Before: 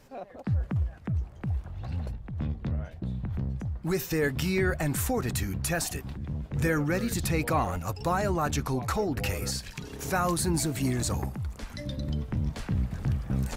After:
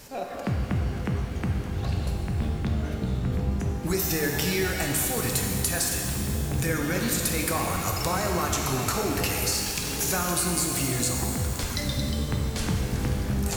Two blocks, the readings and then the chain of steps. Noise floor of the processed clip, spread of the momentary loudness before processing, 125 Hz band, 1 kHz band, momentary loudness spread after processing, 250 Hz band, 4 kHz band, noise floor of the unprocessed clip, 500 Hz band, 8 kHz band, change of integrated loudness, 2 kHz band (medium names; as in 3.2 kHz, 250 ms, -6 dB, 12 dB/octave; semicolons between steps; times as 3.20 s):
-32 dBFS, 9 LU, +2.0 dB, +1.5 dB, 5 LU, +2.0 dB, +8.0 dB, -47 dBFS, +1.5 dB, +9.0 dB, +3.5 dB, +3.5 dB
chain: treble shelf 3.1 kHz +12 dB; compression 6:1, threshold -32 dBFS, peak gain reduction 14.5 dB; pitch-shifted reverb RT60 2.6 s, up +12 st, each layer -8 dB, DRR 0.5 dB; trim +6 dB